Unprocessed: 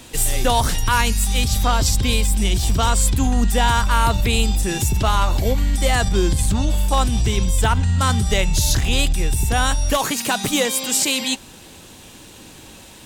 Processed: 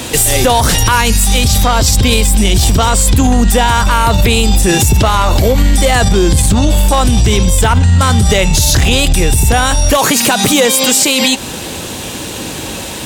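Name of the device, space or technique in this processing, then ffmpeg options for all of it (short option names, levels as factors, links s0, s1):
mastering chain: -af "highpass=51,equalizer=f=520:t=o:w=0.77:g=3,acompressor=threshold=0.0891:ratio=2.5,asoftclip=type=tanh:threshold=0.2,alimiter=level_in=10.6:limit=0.891:release=50:level=0:latency=1,volume=0.841"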